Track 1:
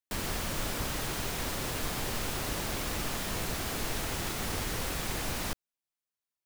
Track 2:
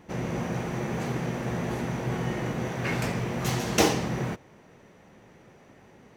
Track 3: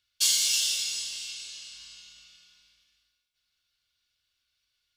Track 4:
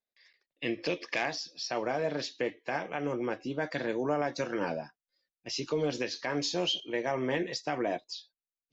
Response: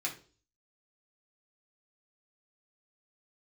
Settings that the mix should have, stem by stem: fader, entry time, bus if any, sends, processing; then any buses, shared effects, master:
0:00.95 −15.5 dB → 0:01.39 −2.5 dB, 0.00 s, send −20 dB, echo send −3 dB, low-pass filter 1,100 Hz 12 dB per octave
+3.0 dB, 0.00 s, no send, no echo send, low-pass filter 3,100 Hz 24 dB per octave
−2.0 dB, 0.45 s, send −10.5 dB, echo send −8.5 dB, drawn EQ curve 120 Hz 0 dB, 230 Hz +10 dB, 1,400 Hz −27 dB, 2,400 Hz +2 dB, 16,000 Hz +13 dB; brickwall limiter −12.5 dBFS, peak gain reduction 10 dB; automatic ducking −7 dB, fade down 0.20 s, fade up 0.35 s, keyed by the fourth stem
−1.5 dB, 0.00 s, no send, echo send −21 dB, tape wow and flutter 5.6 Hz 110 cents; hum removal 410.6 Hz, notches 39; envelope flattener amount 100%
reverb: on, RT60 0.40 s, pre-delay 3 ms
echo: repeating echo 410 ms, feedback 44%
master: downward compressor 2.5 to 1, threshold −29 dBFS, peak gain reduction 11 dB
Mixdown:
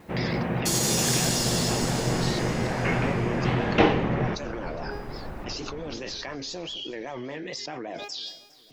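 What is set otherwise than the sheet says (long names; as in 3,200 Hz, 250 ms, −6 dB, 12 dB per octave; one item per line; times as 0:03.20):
stem 4 −1.5 dB → −9.0 dB
master: missing downward compressor 2.5 to 1, threshold −29 dBFS, peak gain reduction 11 dB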